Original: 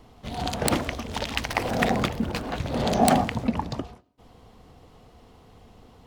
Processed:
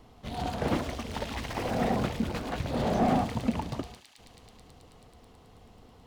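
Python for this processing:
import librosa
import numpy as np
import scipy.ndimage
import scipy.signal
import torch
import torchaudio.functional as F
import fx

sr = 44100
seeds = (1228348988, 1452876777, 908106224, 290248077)

y = fx.echo_wet_highpass(x, sr, ms=108, feedback_pct=84, hz=2900.0, wet_db=-13.0)
y = fx.slew_limit(y, sr, full_power_hz=64.0)
y = y * 10.0 ** (-3.0 / 20.0)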